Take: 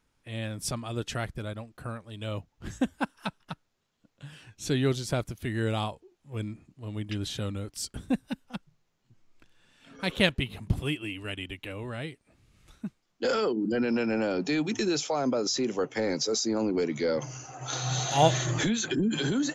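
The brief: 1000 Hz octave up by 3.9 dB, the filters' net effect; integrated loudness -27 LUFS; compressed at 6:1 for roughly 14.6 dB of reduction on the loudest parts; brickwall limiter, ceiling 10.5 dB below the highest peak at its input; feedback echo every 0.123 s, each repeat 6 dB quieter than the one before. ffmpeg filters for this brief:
-af "equalizer=f=1k:t=o:g=5.5,acompressor=threshold=-29dB:ratio=6,alimiter=level_in=3.5dB:limit=-24dB:level=0:latency=1,volume=-3.5dB,aecho=1:1:123|246|369|492|615|738:0.501|0.251|0.125|0.0626|0.0313|0.0157,volume=9dB"

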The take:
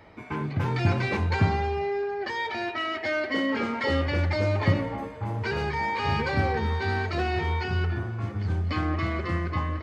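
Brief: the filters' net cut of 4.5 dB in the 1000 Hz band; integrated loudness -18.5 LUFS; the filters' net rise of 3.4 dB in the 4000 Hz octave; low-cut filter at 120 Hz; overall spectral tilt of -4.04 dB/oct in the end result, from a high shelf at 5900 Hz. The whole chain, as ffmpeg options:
-af "highpass=120,equalizer=f=1k:t=o:g=-6,equalizer=f=4k:t=o:g=7.5,highshelf=f=5.9k:g=-7,volume=11dB"

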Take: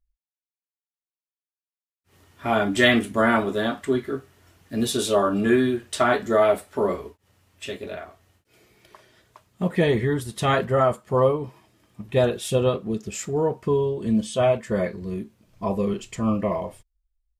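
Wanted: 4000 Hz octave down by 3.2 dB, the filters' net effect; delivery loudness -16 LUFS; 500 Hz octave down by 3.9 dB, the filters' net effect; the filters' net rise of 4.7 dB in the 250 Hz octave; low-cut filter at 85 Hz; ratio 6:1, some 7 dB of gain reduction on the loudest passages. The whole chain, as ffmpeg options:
-af "highpass=85,equalizer=f=250:t=o:g=7.5,equalizer=f=500:t=o:g=-7.5,equalizer=f=4k:t=o:g=-4,acompressor=threshold=-20dB:ratio=6,volume=10.5dB"

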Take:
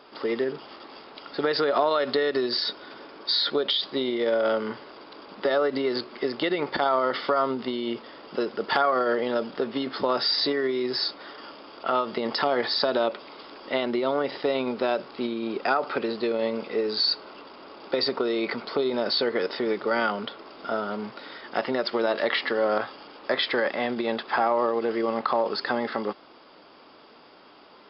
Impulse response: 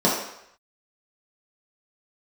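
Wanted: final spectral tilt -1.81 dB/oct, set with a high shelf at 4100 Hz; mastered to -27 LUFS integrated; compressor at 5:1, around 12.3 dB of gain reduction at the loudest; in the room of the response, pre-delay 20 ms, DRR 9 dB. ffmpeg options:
-filter_complex "[0:a]highshelf=f=4.1k:g=-3.5,acompressor=threshold=-33dB:ratio=5,asplit=2[a][b];[1:a]atrim=start_sample=2205,adelay=20[c];[b][c]afir=irnorm=-1:irlink=0,volume=-27dB[d];[a][d]amix=inputs=2:normalize=0,volume=8.5dB"

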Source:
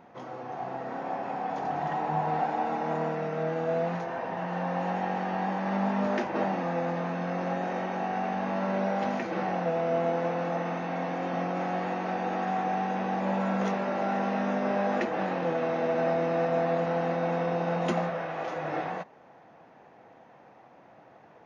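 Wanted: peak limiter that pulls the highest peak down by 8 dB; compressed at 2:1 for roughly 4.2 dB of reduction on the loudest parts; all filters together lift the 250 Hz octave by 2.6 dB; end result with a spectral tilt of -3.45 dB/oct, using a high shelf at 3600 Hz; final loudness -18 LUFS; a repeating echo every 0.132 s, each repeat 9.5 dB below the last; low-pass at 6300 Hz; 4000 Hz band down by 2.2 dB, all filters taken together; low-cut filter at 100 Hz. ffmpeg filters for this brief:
-af "highpass=100,lowpass=6.3k,equalizer=f=250:t=o:g=4,highshelf=f=3.6k:g=7.5,equalizer=f=4k:t=o:g=-7.5,acompressor=threshold=-30dB:ratio=2,alimiter=level_in=2.5dB:limit=-24dB:level=0:latency=1,volume=-2.5dB,aecho=1:1:132|264|396|528:0.335|0.111|0.0365|0.012,volume=16.5dB"

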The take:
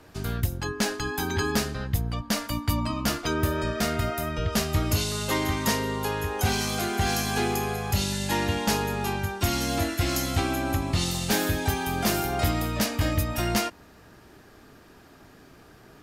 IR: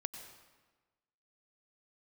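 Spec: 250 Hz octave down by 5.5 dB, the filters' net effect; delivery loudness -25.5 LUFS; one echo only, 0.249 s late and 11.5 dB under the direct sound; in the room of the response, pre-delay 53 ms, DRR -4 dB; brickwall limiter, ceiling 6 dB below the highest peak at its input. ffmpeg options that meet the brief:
-filter_complex "[0:a]equalizer=f=250:t=o:g=-7.5,alimiter=limit=-20dB:level=0:latency=1,aecho=1:1:249:0.266,asplit=2[a][b];[1:a]atrim=start_sample=2205,adelay=53[c];[b][c]afir=irnorm=-1:irlink=0,volume=5dB[d];[a][d]amix=inputs=2:normalize=0,volume=-1.5dB"

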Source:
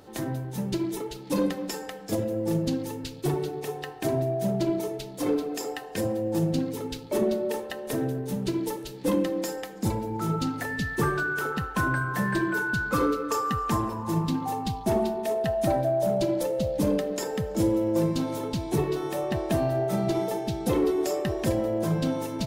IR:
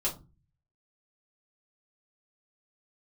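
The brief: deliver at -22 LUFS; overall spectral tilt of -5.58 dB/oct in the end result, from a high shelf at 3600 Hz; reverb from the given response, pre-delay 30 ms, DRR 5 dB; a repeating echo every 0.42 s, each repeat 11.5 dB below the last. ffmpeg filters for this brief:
-filter_complex "[0:a]highshelf=f=3.6k:g=-4,aecho=1:1:420|840|1260:0.266|0.0718|0.0194,asplit=2[a][b];[1:a]atrim=start_sample=2205,adelay=30[c];[b][c]afir=irnorm=-1:irlink=0,volume=-10.5dB[d];[a][d]amix=inputs=2:normalize=0,volume=4.5dB"

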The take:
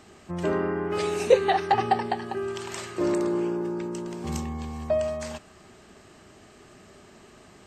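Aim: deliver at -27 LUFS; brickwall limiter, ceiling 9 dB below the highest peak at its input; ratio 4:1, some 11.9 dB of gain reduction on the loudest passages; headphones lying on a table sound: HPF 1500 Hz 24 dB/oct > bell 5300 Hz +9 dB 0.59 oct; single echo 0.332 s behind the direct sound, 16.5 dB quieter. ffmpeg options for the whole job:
-af "acompressor=threshold=-27dB:ratio=4,alimiter=level_in=1.5dB:limit=-24dB:level=0:latency=1,volume=-1.5dB,highpass=f=1.5k:w=0.5412,highpass=f=1.5k:w=1.3066,equalizer=f=5.3k:t=o:w=0.59:g=9,aecho=1:1:332:0.15,volume=17dB"

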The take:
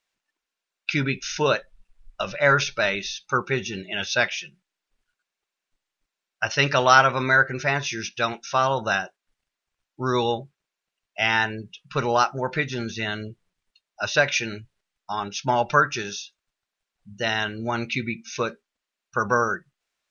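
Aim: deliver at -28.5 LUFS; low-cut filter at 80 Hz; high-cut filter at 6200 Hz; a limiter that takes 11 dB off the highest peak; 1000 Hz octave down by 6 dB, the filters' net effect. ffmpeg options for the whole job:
-af "highpass=80,lowpass=6.2k,equalizer=f=1k:t=o:g=-8.5,volume=1.5dB,alimiter=limit=-16dB:level=0:latency=1"

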